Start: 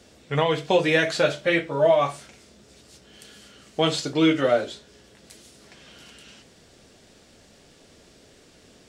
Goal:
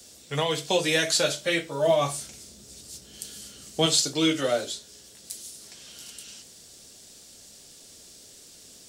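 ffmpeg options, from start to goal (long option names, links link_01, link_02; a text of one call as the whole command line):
ffmpeg -i in.wav -filter_complex "[0:a]asettb=1/sr,asplit=3[link_01][link_02][link_03];[link_01]atrim=end=1.874[link_04];[link_02]atrim=start=1.87:end=3.86,asetpts=PTS-STARTPTS,afade=type=in:duration=0.004:curve=qsin,afade=type=out:start_time=1.986:duration=0.004:curve=qsin,lowshelf=frequency=340:gain=8.5[link_05];[link_03]atrim=start=3.856[link_06];[link_04][link_05]acrossfade=duration=0.004:curve1=hsin:curve2=qsin[link_07];[link_07][link_06]acrossfade=duration=0.004:curve1=qsin:curve2=hsin,acrossover=split=190|620|2900[link_08][link_09][link_10][link_11];[link_11]crystalizer=i=6.5:c=0[link_12];[link_08][link_09][link_10][link_12]amix=inputs=4:normalize=0,volume=-5dB" out.wav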